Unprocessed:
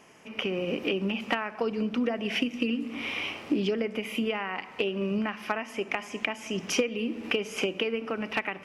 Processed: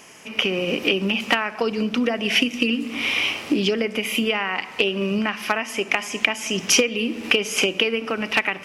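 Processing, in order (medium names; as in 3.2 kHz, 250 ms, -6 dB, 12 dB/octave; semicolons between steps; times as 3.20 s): treble shelf 2.5 kHz +11 dB; trim +5.5 dB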